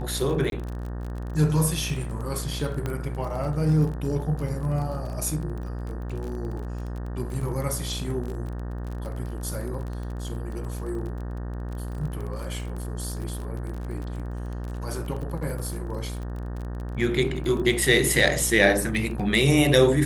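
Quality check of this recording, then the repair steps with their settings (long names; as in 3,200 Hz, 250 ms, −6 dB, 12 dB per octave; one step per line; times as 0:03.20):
mains buzz 60 Hz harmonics 31 −32 dBFS
surface crackle 26 per second −32 dBFS
0:00.50–0:00.52: drop-out 22 ms
0:02.86: click −16 dBFS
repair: click removal
hum removal 60 Hz, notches 31
repair the gap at 0:00.50, 22 ms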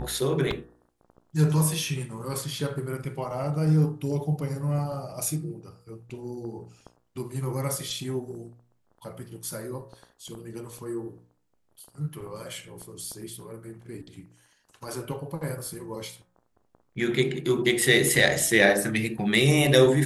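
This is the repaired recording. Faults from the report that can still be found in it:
none of them is left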